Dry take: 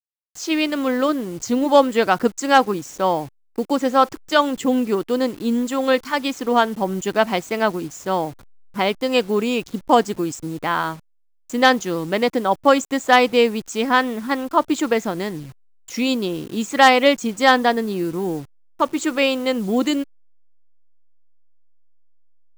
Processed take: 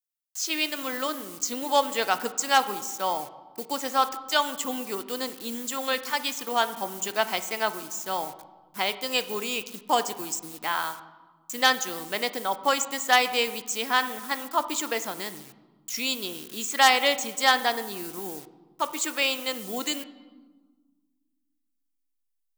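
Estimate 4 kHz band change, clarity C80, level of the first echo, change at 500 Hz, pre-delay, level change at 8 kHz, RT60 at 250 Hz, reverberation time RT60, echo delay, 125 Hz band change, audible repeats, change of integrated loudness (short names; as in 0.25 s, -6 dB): -1.0 dB, 15.5 dB, none, -11.5 dB, 3 ms, +3.0 dB, 2.2 s, 1.4 s, none, -17.5 dB, none, -7.0 dB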